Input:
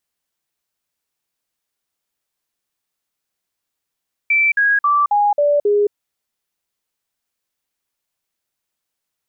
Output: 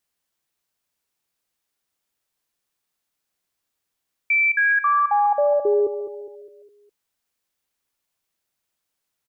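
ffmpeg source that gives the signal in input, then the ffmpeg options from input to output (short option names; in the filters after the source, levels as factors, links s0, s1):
-f lavfi -i "aevalsrc='0.266*clip(min(mod(t,0.27),0.22-mod(t,0.27))/0.005,0,1)*sin(2*PI*2330*pow(2,-floor(t/0.27)/2)*mod(t,0.27))':d=1.62:s=44100"
-filter_complex "[0:a]alimiter=limit=0.178:level=0:latency=1:release=180,asplit=2[s0][s1];[s1]adelay=205,lowpass=f=2000:p=1,volume=0.299,asplit=2[s2][s3];[s3]adelay=205,lowpass=f=2000:p=1,volume=0.47,asplit=2[s4][s5];[s5]adelay=205,lowpass=f=2000:p=1,volume=0.47,asplit=2[s6][s7];[s7]adelay=205,lowpass=f=2000:p=1,volume=0.47,asplit=2[s8][s9];[s9]adelay=205,lowpass=f=2000:p=1,volume=0.47[s10];[s2][s4][s6][s8][s10]amix=inputs=5:normalize=0[s11];[s0][s11]amix=inputs=2:normalize=0"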